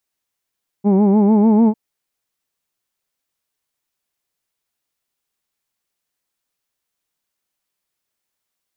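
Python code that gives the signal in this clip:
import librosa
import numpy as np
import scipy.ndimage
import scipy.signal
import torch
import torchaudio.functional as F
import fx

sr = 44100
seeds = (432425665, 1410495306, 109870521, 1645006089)

y = fx.vowel(sr, seeds[0], length_s=0.9, word="who'd", hz=195.0, glide_st=2.5, vibrato_hz=6.7, vibrato_st=0.9)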